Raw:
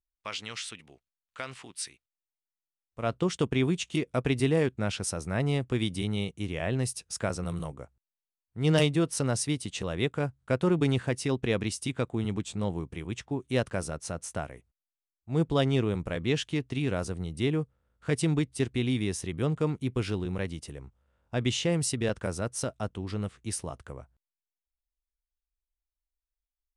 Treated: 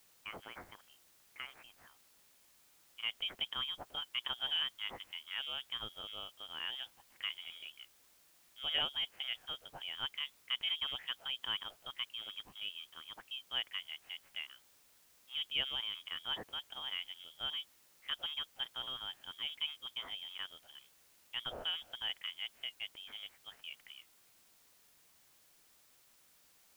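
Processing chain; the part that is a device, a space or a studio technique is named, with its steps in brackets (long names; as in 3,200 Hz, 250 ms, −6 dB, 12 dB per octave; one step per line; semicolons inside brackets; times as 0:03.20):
scrambled radio voice (band-pass filter 380–2,800 Hz; voice inversion scrambler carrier 3,500 Hz; white noise bed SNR 23 dB)
level −7.5 dB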